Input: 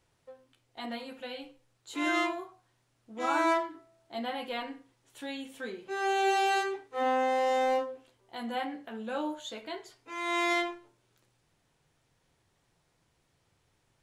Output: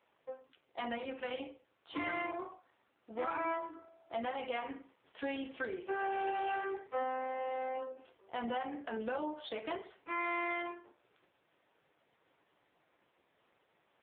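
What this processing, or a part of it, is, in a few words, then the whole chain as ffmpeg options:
voicemail: -af "highpass=320,lowpass=3.1k,acompressor=threshold=-40dB:ratio=8,volume=7dB" -ar 8000 -c:a libopencore_amrnb -b:a 5900

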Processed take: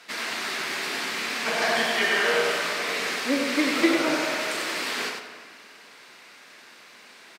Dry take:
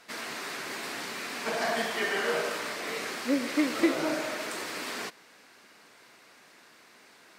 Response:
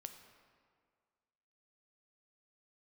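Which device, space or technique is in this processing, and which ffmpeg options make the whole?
PA in a hall: -filter_complex "[0:a]highpass=130,equalizer=f=3k:t=o:w=2.3:g=6,aecho=1:1:97:0.531[a];[1:a]atrim=start_sample=2205[b];[a][b]afir=irnorm=-1:irlink=0,volume=7.5dB"

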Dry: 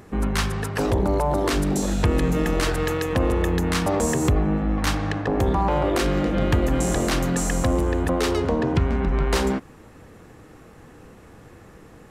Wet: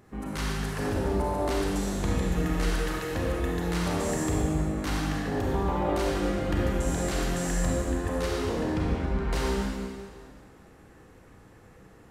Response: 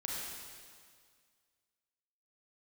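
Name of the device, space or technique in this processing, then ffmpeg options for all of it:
stairwell: -filter_complex "[1:a]atrim=start_sample=2205[a];[0:a][a]afir=irnorm=-1:irlink=0,volume=-8.5dB"

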